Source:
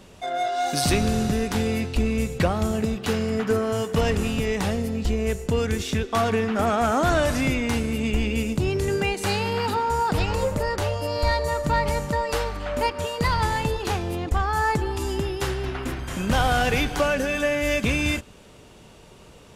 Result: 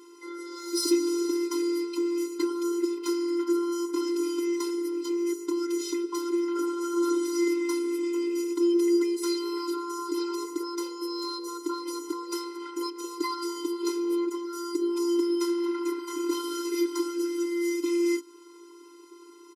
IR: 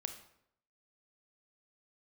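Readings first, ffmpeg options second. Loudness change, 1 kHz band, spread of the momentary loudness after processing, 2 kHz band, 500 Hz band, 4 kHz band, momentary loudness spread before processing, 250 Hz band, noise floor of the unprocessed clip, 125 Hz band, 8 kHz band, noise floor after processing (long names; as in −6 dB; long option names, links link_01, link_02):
−4.5 dB, −12.5 dB, 8 LU, −15.5 dB, −4.0 dB, −6.5 dB, 5 LU, +0.5 dB, −48 dBFS, below −40 dB, −2.5 dB, −50 dBFS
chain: -filter_complex "[0:a]acrossover=split=470|3400[link_01][link_02][link_03];[link_02]acompressor=threshold=-35dB:ratio=6[link_04];[link_01][link_04][link_03]amix=inputs=3:normalize=0,afftfilt=real='hypot(re,im)*cos(PI*b)':imag='0':win_size=512:overlap=0.75,acontrast=36,aecho=1:1:3.1:0.43,afftfilt=real='re*eq(mod(floor(b*sr/1024/270),2),1)':imag='im*eq(mod(floor(b*sr/1024/270),2),1)':win_size=1024:overlap=0.75,volume=-2dB"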